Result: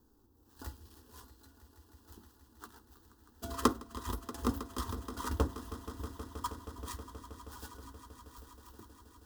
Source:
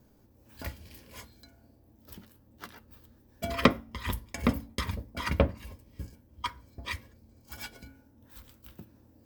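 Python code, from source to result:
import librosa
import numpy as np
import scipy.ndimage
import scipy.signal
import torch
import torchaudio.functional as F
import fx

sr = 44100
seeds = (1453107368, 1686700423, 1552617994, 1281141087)

y = fx.dead_time(x, sr, dead_ms=0.086)
y = fx.fixed_phaser(y, sr, hz=600.0, stages=6)
y = fx.echo_swell(y, sr, ms=159, loudest=5, wet_db=-17.0)
y = F.gain(torch.from_numpy(y), -2.5).numpy()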